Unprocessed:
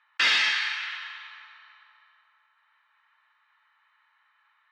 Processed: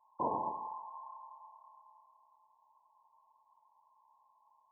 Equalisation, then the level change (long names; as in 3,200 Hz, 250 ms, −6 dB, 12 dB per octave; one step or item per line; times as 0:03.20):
linear-phase brick-wall low-pass 1,100 Hz
+7.0 dB